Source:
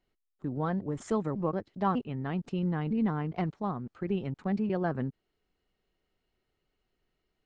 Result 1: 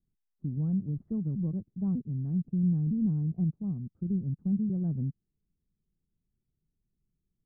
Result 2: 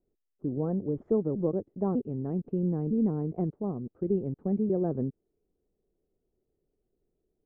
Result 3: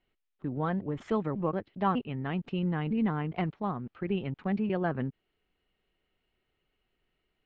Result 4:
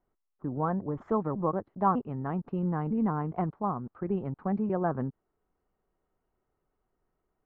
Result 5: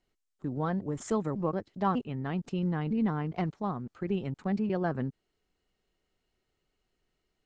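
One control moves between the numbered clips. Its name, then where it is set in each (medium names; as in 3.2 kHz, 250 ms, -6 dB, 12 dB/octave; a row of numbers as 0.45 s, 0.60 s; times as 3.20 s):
resonant low-pass, frequency: 170 Hz, 440 Hz, 2.9 kHz, 1.1 kHz, 7.6 kHz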